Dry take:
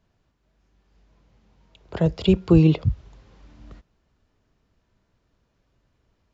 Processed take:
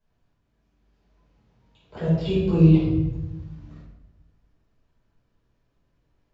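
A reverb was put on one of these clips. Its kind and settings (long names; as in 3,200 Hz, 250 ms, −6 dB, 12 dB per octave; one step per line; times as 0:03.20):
rectangular room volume 380 cubic metres, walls mixed, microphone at 5.1 metres
level −16 dB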